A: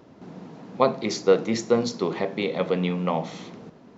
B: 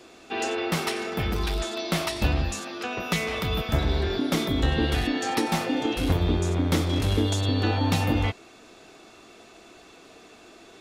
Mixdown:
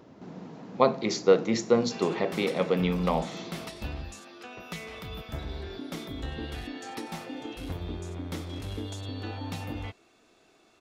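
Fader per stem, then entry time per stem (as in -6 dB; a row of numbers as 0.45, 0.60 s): -1.5, -12.5 dB; 0.00, 1.60 s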